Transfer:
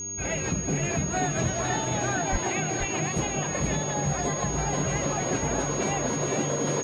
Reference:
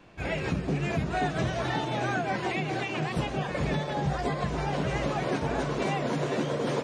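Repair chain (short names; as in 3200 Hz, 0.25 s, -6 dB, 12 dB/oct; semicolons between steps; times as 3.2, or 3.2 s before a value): de-hum 98.8 Hz, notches 4; notch 6600 Hz, Q 30; 2.31–2.43 HPF 140 Hz 24 dB/oct; inverse comb 0.477 s -6.5 dB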